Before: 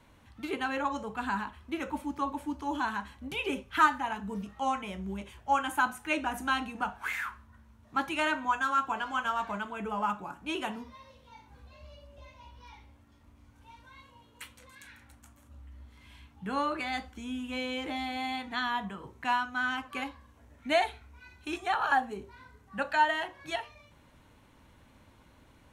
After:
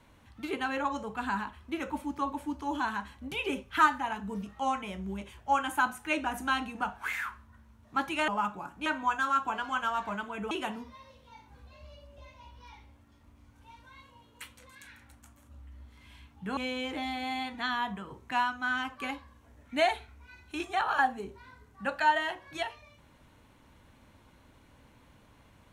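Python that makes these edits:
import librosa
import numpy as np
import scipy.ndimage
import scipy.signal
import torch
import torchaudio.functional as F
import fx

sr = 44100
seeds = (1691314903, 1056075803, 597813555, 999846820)

y = fx.edit(x, sr, fx.move(start_s=9.93, length_s=0.58, to_s=8.28),
    fx.cut(start_s=16.57, length_s=0.93), tone=tone)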